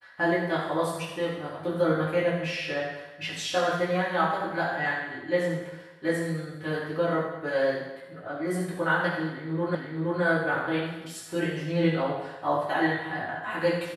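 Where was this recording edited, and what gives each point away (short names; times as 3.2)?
9.75 repeat of the last 0.47 s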